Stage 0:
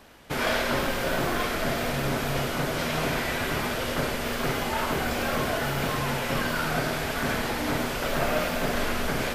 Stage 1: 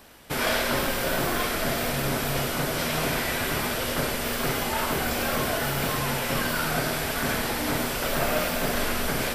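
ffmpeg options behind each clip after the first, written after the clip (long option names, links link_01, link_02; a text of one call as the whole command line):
ffmpeg -i in.wav -af "highshelf=frequency=6200:gain=9.5,bandreject=frequency=6600:width=19" out.wav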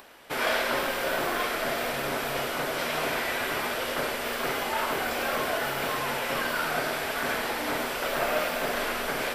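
ffmpeg -i in.wav -af "bass=frequency=250:gain=-14,treble=frequency=4000:gain=-7,acompressor=mode=upward:threshold=-47dB:ratio=2.5" out.wav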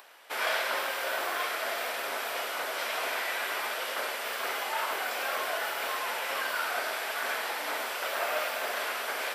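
ffmpeg -i in.wav -af "highpass=610,volume=-2dB" out.wav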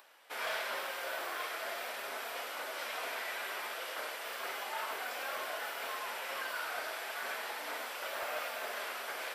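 ffmpeg -i in.wav -af "volume=22dB,asoftclip=hard,volume=-22dB,flanger=delay=3.3:depth=3.2:regen=-64:speed=0.37:shape=triangular,volume=-3dB" out.wav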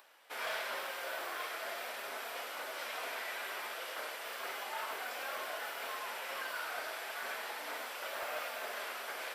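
ffmpeg -i in.wav -af "acrusher=bits=8:mode=log:mix=0:aa=0.000001,volume=-1.5dB" out.wav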